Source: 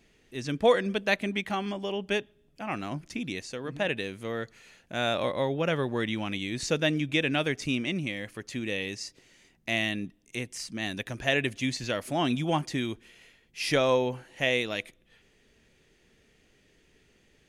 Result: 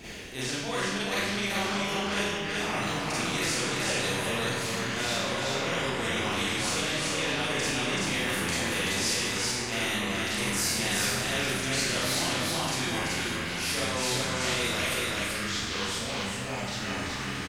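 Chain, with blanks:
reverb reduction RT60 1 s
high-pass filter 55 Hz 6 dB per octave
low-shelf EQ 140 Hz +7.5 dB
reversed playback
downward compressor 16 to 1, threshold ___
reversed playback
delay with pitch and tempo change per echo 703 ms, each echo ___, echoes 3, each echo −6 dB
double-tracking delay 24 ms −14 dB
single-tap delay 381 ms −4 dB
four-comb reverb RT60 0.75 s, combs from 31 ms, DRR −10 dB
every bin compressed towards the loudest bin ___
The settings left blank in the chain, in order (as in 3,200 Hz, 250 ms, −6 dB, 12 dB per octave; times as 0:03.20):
−39 dBFS, −4 semitones, 2 to 1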